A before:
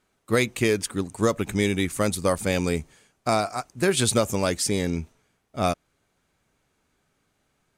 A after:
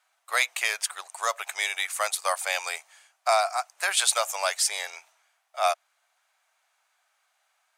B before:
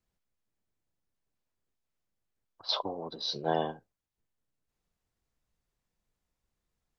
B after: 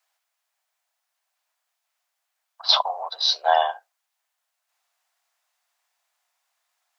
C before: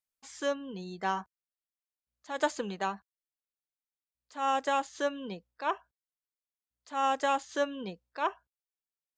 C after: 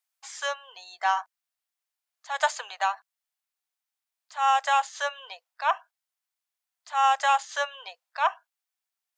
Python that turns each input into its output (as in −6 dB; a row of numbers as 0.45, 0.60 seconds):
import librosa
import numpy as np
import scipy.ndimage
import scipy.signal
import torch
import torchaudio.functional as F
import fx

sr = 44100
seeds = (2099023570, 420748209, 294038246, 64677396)

y = scipy.signal.sosfilt(scipy.signal.ellip(4, 1.0, 60, 680.0, 'highpass', fs=sr, output='sos'), x)
y = y * 10.0 ** (-30 / 20.0) / np.sqrt(np.mean(np.square(y)))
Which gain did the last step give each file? +3.0, +14.0, +8.0 decibels